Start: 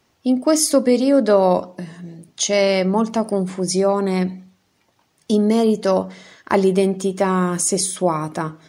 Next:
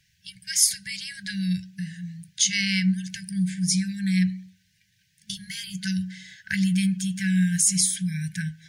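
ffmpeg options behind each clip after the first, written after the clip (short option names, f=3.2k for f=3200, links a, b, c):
-af "afftfilt=real='re*(1-between(b*sr/4096,200,1500))':imag='im*(1-between(b*sr/4096,200,1500))':win_size=4096:overlap=0.75"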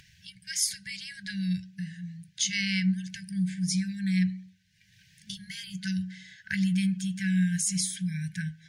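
-af "highshelf=f=7.3k:g=-9,acompressor=mode=upward:threshold=-43dB:ratio=2.5,volume=-3.5dB"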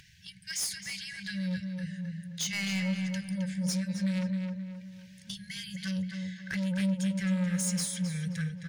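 -filter_complex "[0:a]asoftclip=type=tanh:threshold=-28dB,asplit=2[a][b];[b]adelay=264,lowpass=f=3.1k:p=1,volume=-5dB,asplit=2[c][d];[d]adelay=264,lowpass=f=3.1k:p=1,volume=0.42,asplit=2[e][f];[f]adelay=264,lowpass=f=3.1k:p=1,volume=0.42,asplit=2[g][h];[h]adelay=264,lowpass=f=3.1k:p=1,volume=0.42,asplit=2[i][j];[j]adelay=264,lowpass=f=3.1k:p=1,volume=0.42[k];[a][c][e][g][i][k]amix=inputs=6:normalize=0"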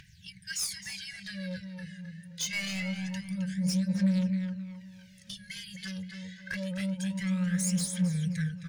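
-af "aphaser=in_gain=1:out_gain=1:delay=2.5:decay=0.56:speed=0.25:type=triangular,volume=-2.5dB"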